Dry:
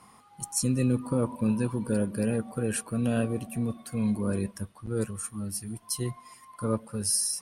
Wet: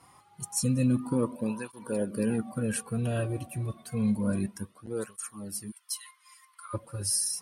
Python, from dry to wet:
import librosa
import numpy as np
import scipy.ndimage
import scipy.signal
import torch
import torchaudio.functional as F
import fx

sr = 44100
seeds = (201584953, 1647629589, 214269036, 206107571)

y = fx.ellip_highpass(x, sr, hz=1200.0, order=4, stop_db=70, at=(5.7, 6.73), fade=0.02)
y = fx.flanger_cancel(y, sr, hz=0.29, depth_ms=4.8)
y = y * 10.0 ** (1.5 / 20.0)